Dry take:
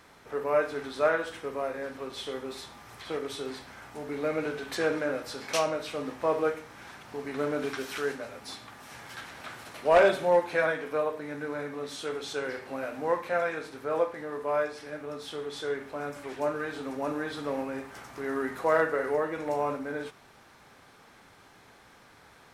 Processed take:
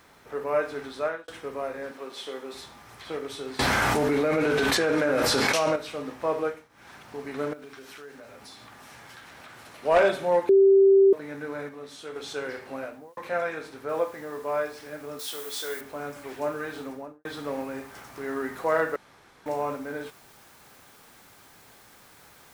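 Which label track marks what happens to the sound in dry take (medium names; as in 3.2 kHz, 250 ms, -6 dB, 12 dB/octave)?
0.780000	1.280000	fade out equal-power
1.910000	2.540000	high-pass 260 Hz
3.590000	5.760000	level flattener amount 100%
6.420000	6.960000	dip -15.5 dB, fades 0.27 s
7.530000	9.830000	compression 4:1, threshold -43 dBFS
10.490000	11.130000	bleep 390 Hz -13 dBFS
11.690000	12.160000	gain -5 dB
12.770000	13.170000	studio fade out
13.890000	13.890000	noise floor step -70 dB -57 dB
15.190000	15.810000	RIAA curve recording
16.790000	17.250000	studio fade out
18.960000	19.460000	room tone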